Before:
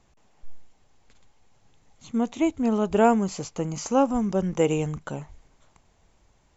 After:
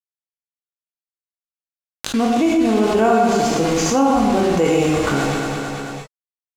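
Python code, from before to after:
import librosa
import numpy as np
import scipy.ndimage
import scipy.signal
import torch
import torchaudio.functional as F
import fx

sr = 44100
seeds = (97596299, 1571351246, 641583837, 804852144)

y = scipy.signal.sosfilt(scipy.signal.butter(2, 43.0, 'highpass', fs=sr, output='sos'), x)
y = fx.low_shelf(y, sr, hz=63.0, db=-3.5)
y = y + 0.36 * np.pad(y, (int(2.7 * sr / 1000.0), 0))[:len(y)]
y = fx.quant_dither(y, sr, seeds[0], bits=6, dither='none')
y = fx.air_absorb(y, sr, metres=55.0)
y = fx.echo_feedback(y, sr, ms=221, feedback_pct=32, wet_db=-12)
y = fx.rev_gated(y, sr, seeds[1], gate_ms=190, shape='flat', drr_db=-2.5)
y = fx.env_flatten(y, sr, amount_pct=70)
y = y * 10.0 ** (-1.0 / 20.0)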